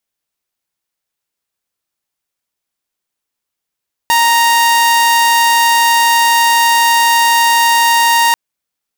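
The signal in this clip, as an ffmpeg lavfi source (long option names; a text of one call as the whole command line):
ffmpeg -f lavfi -i "aevalsrc='0.531*(2*mod(932*t,1)-1)':duration=4.24:sample_rate=44100" out.wav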